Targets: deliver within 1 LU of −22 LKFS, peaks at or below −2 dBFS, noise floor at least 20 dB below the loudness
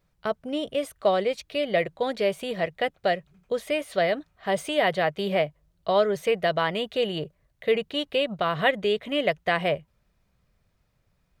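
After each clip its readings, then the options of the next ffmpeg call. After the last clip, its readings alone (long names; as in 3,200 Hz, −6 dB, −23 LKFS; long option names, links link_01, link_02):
integrated loudness −26.5 LKFS; sample peak −9.5 dBFS; target loudness −22.0 LKFS
→ -af "volume=4.5dB"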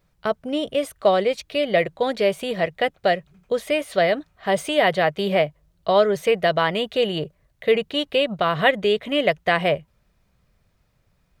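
integrated loudness −22.0 LKFS; sample peak −5.0 dBFS; background noise floor −66 dBFS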